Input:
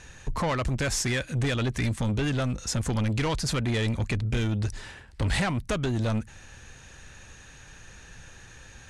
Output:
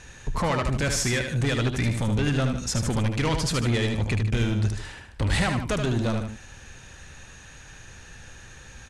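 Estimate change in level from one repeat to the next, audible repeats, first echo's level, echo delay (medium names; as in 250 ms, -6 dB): -7.0 dB, 2, -6.0 dB, 76 ms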